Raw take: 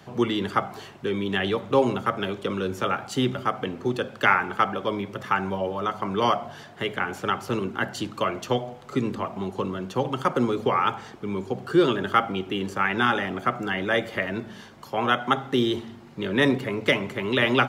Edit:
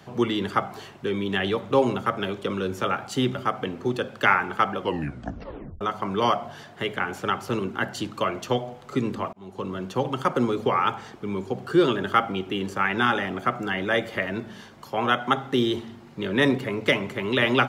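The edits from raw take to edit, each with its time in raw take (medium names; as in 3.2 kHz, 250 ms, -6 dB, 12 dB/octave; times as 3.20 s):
4.78 s: tape stop 1.03 s
9.33–9.78 s: fade in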